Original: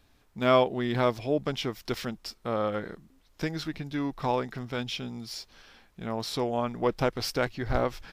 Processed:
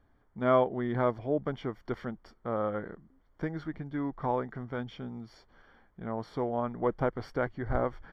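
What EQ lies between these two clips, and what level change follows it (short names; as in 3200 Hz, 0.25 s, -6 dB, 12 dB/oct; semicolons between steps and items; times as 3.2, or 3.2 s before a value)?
polynomial smoothing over 41 samples; -2.5 dB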